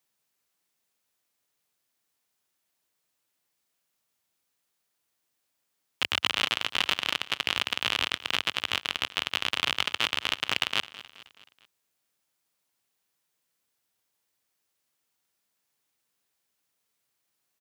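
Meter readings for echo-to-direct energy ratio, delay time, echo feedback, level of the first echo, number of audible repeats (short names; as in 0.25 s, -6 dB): -16.0 dB, 0.213 s, 52%, -17.5 dB, 4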